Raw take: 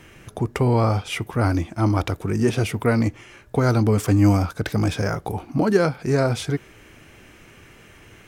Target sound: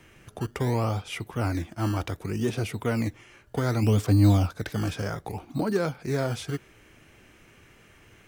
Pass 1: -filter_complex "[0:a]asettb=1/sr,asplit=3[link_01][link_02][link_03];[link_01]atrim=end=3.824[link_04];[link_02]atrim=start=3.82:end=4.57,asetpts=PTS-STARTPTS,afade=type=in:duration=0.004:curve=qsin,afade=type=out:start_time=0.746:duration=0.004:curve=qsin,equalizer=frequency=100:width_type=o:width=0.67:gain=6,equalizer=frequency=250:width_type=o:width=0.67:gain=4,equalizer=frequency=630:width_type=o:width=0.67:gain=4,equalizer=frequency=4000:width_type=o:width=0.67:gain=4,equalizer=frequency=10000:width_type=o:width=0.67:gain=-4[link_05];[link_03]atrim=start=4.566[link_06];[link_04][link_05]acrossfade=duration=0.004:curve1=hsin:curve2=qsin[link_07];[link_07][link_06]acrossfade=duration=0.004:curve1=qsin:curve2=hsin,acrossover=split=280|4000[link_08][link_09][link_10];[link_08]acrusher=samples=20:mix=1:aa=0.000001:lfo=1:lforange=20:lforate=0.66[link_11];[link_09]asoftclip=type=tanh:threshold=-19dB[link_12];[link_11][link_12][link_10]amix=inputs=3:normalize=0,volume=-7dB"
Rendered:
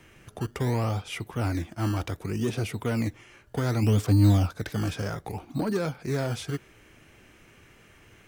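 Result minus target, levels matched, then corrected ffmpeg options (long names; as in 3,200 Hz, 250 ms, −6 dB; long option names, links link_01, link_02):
soft clipping: distortion +11 dB
-filter_complex "[0:a]asettb=1/sr,asplit=3[link_01][link_02][link_03];[link_01]atrim=end=3.824[link_04];[link_02]atrim=start=3.82:end=4.57,asetpts=PTS-STARTPTS,afade=type=in:duration=0.004:curve=qsin,afade=type=out:start_time=0.746:duration=0.004:curve=qsin,equalizer=frequency=100:width_type=o:width=0.67:gain=6,equalizer=frequency=250:width_type=o:width=0.67:gain=4,equalizer=frequency=630:width_type=o:width=0.67:gain=4,equalizer=frequency=4000:width_type=o:width=0.67:gain=4,equalizer=frequency=10000:width_type=o:width=0.67:gain=-4[link_05];[link_03]atrim=start=4.566[link_06];[link_04][link_05]acrossfade=duration=0.004:curve1=hsin:curve2=qsin[link_07];[link_07][link_06]acrossfade=duration=0.004:curve1=qsin:curve2=hsin,acrossover=split=280|4000[link_08][link_09][link_10];[link_08]acrusher=samples=20:mix=1:aa=0.000001:lfo=1:lforange=20:lforate=0.66[link_11];[link_09]asoftclip=type=tanh:threshold=-10.5dB[link_12];[link_11][link_12][link_10]amix=inputs=3:normalize=0,volume=-7dB"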